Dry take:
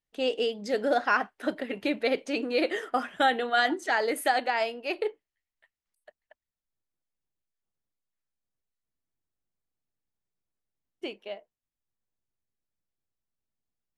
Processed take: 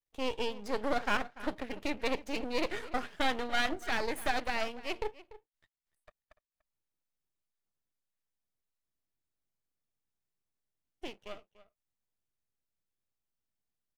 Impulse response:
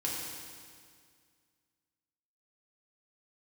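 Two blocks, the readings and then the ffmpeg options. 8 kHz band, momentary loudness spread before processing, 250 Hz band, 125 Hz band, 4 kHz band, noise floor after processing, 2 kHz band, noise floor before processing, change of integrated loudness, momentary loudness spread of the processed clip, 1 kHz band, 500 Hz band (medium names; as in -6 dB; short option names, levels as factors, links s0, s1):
-3.5 dB, 13 LU, -5.5 dB, no reading, -4.5 dB, under -85 dBFS, -6.5 dB, under -85 dBFS, -6.5 dB, 13 LU, -7.5 dB, -8.0 dB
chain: -filter_complex "[0:a]aeval=exprs='max(val(0),0)':c=same,asplit=2[s0][s1];[s1]adelay=291.5,volume=0.141,highshelf=f=4000:g=-6.56[s2];[s0][s2]amix=inputs=2:normalize=0,volume=0.75"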